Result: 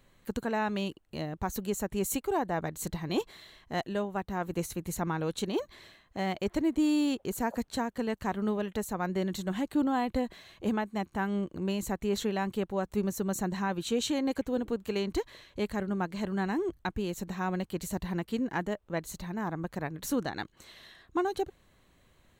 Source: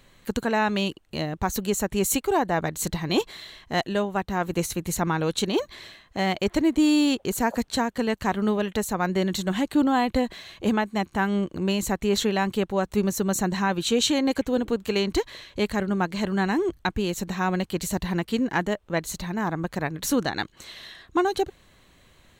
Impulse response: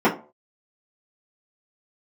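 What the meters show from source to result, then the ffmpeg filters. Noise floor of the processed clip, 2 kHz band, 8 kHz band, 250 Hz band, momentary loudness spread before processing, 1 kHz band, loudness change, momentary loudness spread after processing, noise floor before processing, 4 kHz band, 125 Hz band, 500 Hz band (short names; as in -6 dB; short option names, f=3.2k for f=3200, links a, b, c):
-66 dBFS, -9.0 dB, -9.5 dB, -6.5 dB, 7 LU, -7.5 dB, -7.0 dB, 7 LU, -58 dBFS, -11.0 dB, -6.5 dB, -7.0 dB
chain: -af "equalizer=f=4k:w=0.47:g=-4.5,volume=-6.5dB"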